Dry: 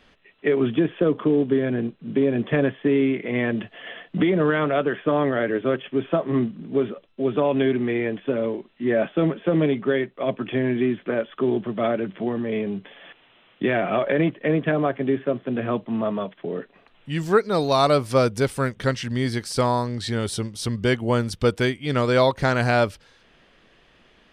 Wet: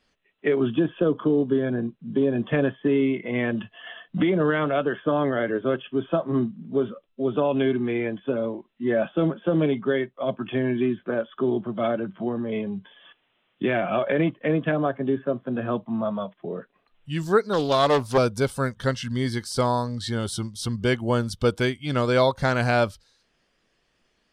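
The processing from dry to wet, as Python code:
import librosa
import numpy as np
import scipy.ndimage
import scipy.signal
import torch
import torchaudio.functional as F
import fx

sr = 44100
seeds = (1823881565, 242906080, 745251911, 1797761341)

y = fx.noise_reduce_blind(x, sr, reduce_db=12)
y = fx.doppler_dist(y, sr, depth_ms=0.42, at=(17.53, 18.18))
y = F.gain(torch.from_numpy(y), -1.5).numpy()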